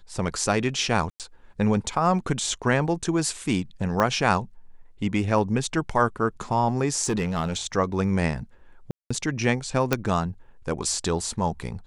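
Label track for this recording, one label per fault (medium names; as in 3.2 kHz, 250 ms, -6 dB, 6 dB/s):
1.100000	1.200000	dropout 98 ms
4.000000	4.000000	pop -10 dBFS
7.040000	7.670000	clipped -20 dBFS
8.910000	9.110000	dropout 195 ms
9.930000	9.930000	pop -6 dBFS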